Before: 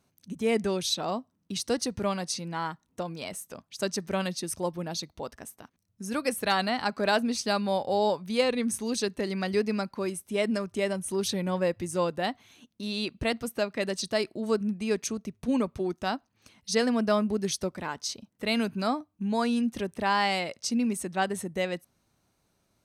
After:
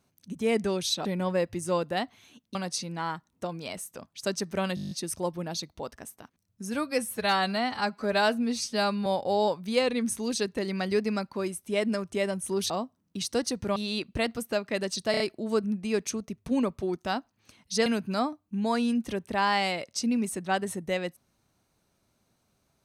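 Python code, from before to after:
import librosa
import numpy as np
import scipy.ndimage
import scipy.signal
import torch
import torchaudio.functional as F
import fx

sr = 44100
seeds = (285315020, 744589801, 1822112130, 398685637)

y = fx.edit(x, sr, fx.swap(start_s=1.05, length_s=1.06, other_s=11.32, other_length_s=1.5),
    fx.stutter(start_s=4.31, slice_s=0.02, count=9),
    fx.stretch_span(start_s=6.12, length_s=1.56, factor=1.5),
    fx.stutter(start_s=14.17, slice_s=0.03, count=4),
    fx.cut(start_s=16.83, length_s=1.71), tone=tone)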